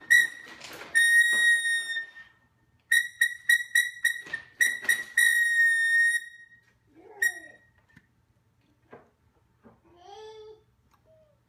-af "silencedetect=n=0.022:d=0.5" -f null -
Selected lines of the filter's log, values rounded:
silence_start: 2.02
silence_end: 2.92 | silence_duration: 0.90
silence_start: 6.22
silence_end: 7.22 | silence_duration: 1.00
silence_start: 7.37
silence_end: 11.49 | silence_duration: 4.12